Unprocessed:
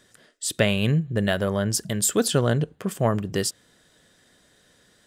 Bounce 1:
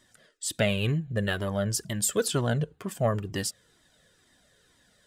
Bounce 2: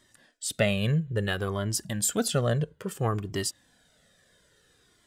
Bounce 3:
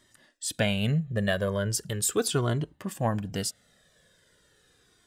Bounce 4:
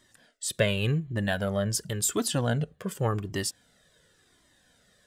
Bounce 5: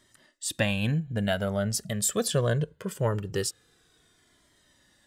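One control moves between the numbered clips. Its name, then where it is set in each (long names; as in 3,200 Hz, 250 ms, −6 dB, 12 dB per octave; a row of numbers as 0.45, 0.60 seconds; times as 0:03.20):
flanger whose copies keep moving one way, speed: 2.1, 0.59, 0.38, 0.9, 0.22 Hertz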